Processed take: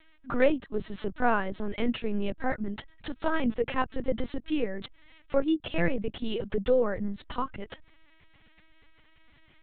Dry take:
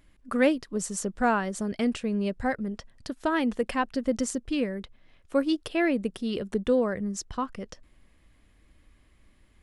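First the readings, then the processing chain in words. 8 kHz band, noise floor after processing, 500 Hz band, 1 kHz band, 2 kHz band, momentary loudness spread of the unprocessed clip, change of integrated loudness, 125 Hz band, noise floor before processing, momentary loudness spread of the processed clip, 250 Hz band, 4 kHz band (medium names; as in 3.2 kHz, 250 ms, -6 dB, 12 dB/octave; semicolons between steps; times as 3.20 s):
under -40 dB, -60 dBFS, -0.5 dB, -1.5 dB, -1.5 dB, 9 LU, -2.0 dB, 0.0 dB, -61 dBFS, 12 LU, -4.0 dB, -2.0 dB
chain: LPC vocoder at 8 kHz pitch kept; tape noise reduction on one side only encoder only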